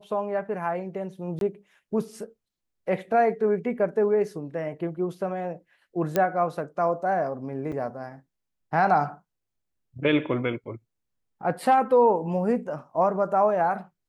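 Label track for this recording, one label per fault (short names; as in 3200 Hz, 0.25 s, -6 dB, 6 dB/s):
1.390000	1.410000	gap 22 ms
6.160000	6.160000	pop -10 dBFS
7.720000	7.730000	gap 5.4 ms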